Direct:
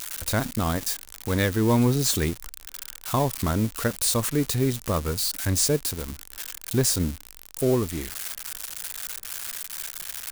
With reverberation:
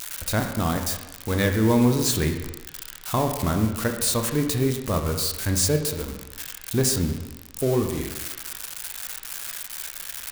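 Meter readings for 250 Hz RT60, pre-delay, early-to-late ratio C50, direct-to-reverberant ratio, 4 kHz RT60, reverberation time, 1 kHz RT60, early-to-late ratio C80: 1.1 s, 8 ms, 6.5 dB, 4.0 dB, 1.0 s, 1.1 s, 1.1 s, 8.5 dB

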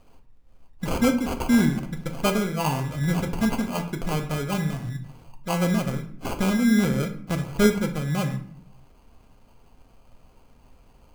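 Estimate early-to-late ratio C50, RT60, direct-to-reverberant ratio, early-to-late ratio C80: 10.0 dB, 0.60 s, 5.0 dB, 14.0 dB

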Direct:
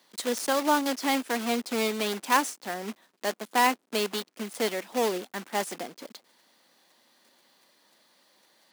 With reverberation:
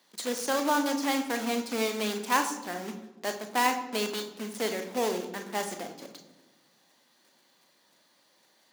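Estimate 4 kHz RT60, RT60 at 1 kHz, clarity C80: 0.80 s, 1.1 s, 12.0 dB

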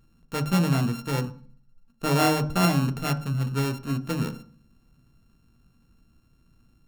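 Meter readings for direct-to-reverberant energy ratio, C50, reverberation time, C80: 9.5 dB, 15.5 dB, 0.45 s, 20.0 dB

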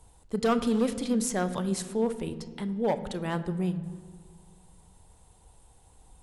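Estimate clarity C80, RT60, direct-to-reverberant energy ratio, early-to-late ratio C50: 14.5 dB, 1.7 s, 11.0 dB, 13.5 dB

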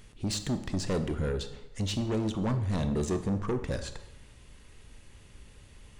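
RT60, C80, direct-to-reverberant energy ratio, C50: 0.95 s, 13.5 dB, 8.5 dB, 11.0 dB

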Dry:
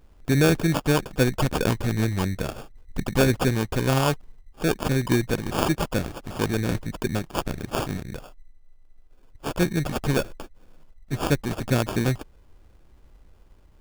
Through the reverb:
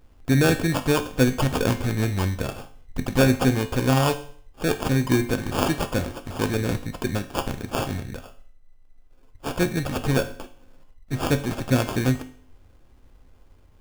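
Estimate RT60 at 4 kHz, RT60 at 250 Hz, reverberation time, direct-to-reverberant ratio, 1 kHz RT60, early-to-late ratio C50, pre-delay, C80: 0.50 s, 0.55 s, 0.50 s, 6.5 dB, 0.50 s, 13.0 dB, 4 ms, 17.0 dB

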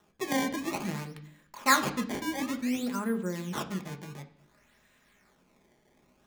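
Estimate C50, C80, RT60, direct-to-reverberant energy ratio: 13.5 dB, 17.0 dB, 0.65 s, 4.5 dB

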